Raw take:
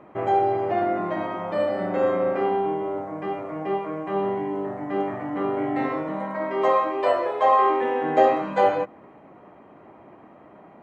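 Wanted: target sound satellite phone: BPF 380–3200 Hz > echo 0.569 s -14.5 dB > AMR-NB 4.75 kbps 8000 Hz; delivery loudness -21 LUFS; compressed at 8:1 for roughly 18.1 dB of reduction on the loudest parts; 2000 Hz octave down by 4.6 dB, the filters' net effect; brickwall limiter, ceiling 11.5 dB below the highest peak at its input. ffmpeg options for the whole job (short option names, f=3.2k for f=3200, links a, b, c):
-af "equalizer=f=2k:t=o:g=-5,acompressor=threshold=-32dB:ratio=8,alimiter=level_in=9dB:limit=-24dB:level=0:latency=1,volume=-9dB,highpass=380,lowpass=3.2k,aecho=1:1:569:0.188,volume=23.5dB" -ar 8000 -c:a libopencore_amrnb -b:a 4750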